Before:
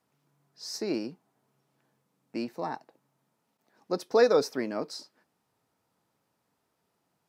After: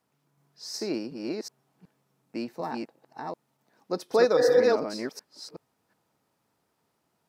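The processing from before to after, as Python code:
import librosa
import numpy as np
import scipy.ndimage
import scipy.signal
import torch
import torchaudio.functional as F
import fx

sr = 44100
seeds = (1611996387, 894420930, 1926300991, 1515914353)

y = fx.reverse_delay(x, sr, ms=371, wet_db=-2.0)
y = fx.spec_repair(y, sr, seeds[0], start_s=4.4, length_s=0.21, low_hz=260.0, high_hz=2000.0, source='after')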